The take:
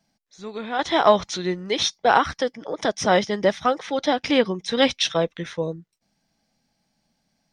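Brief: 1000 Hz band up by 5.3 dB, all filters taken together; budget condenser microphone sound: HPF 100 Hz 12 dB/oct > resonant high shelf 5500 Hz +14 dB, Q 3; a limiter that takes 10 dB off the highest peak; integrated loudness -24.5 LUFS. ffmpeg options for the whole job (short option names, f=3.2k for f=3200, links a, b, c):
-af "equalizer=f=1k:t=o:g=7.5,alimiter=limit=-7.5dB:level=0:latency=1,highpass=100,highshelf=f=5.5k:t=q:w=3:g=14,volume=-3dB"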